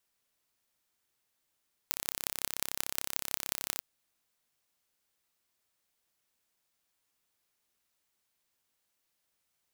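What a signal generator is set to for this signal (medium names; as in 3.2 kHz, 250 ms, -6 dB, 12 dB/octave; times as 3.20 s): pulse train 33.5 per s, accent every 6, -2 dBFS 1.89 s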